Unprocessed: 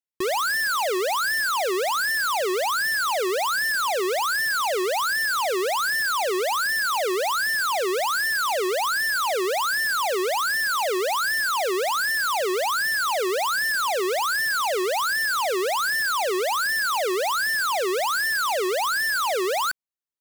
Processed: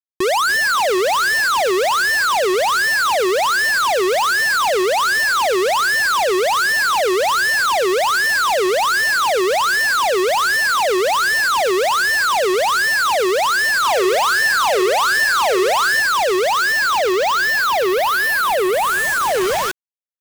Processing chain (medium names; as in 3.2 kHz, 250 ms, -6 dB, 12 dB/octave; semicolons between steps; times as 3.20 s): fade out at the end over 4.56 s; upward compressor, threshold -32 dBFS; distance through air 290 m; thinning echo 285 ms, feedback 38%, high-pass 360 Hz, level -13.5 dB; companded quantiser 2-bit; 13.80–16.00 s: doubling 46 ms -8 dB; trim +8.5 dB